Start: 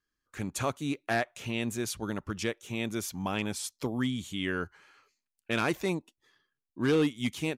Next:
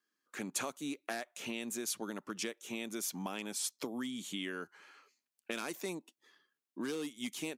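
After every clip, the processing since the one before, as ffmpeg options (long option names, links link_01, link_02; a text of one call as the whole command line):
ffmpeg -i in.wav -filter_complex "[0:a]highpass=frequency=200:width=0.5412,highpass=frequency=200:width=1.3066,acrossover=split=5400[link_01][link_02];[link_01]acompressor=threshold=-38dB:ratio=6[link_03];[link_03][link_02]amix=inputs=2:normalize=0,volume=1dB" out.wav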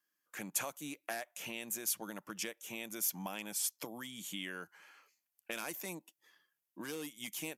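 ffmpeg -i in.wav -af "equalizer=frequency=250:width_type=o:width=0.33:gain=-11,equalizer=frequency=400:width_type=o:width=0.33:gain=-10,equalizer=frequency=1250:width_type=o:width=0.33:gain=-4,equalizer=frequency=4000:width_type=o:width=0.33:gain=-6,equalizer=frequency=12500:width_type=o:width=0.33:gain=12" out.wav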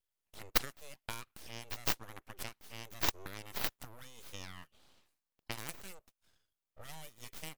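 ffmpeg -i in.wav -af "aeval=exprs='abs(val(0))':channel_layout=same,aeval=exprs='0.106*(cos(1*acos(clip(val(0)/0.106,-1,1)))-cos(1*PI/2))+0.0299*(cos(3*acos(clip(val(0)/0.106,-1,1)))-cos(3*PI/2))+0.000841*(cos(8*acos(clip(val(0)/0.106,-1,1)))-cos(8*PI/2))':channel_layout=same,volume=12.5dB" out.wav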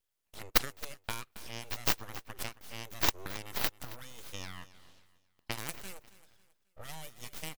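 ffmpeg -i in.wav -af "aecho=1:1:271|542|813:0.133|0.0467|0.0163,volume=4dB" out.wav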